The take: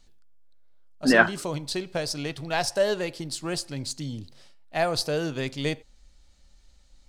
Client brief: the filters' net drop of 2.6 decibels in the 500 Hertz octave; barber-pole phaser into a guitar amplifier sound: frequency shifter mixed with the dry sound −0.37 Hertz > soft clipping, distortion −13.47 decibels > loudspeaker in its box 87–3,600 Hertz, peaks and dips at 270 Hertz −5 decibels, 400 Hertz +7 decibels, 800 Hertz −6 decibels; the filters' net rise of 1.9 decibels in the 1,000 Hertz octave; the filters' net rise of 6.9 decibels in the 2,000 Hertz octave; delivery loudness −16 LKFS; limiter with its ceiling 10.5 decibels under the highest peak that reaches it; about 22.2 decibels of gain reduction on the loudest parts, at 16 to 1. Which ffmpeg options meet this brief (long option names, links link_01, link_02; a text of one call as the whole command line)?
ffmpeg -i in.wav -filter_complex "[0:a]equalizer=frequency=500:width_type=o:gain=-7.5,equalizer=frequency=1000:width_type=o:gain=7,equalizer=frequency=2000:width_type=o:gain=7,acompressor=threshold=-29dB:ratio=16,alimiter=level_in=1dB:limit=-24dB:level=0:latency=1,volume=-1dB,asplit=2[link_01][link_02];[link_02]afreqshift=-0.37[link_03];[link_01][link_03]amix=inputs=2:normalize=1,asoftclip=threshold=-34.5dB,highpass=87,equalizer=frequency=270:width_type=q:width=4:gain=-5,equalizer=frequency=400:width_type=q:width=4:gain=7,equalizer=frequency=800:width_type=q:width=4:gain=-6,lowpass=frequency=3600:width=0.5412,lowpass=frequency=3600:width=1.3066,volume=26.5dB" out.wav